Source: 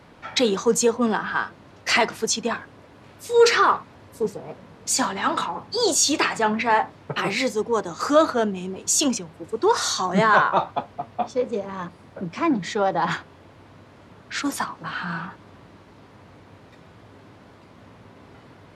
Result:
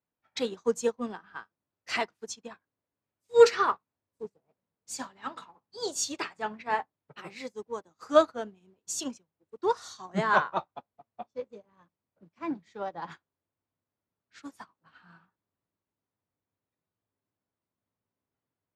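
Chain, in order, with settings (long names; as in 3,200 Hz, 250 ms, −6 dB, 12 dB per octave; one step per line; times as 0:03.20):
expander for the loud parts 2.5 to 1, over −39 dBFS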